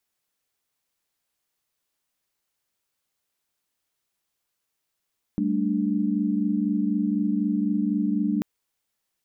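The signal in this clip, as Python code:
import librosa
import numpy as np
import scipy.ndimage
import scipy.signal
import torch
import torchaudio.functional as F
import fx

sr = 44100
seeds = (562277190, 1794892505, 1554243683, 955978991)

y = fx.chord(sr, length_s=3.04, notes=(55, 57, 62), wave='sine', level_db=-25.5)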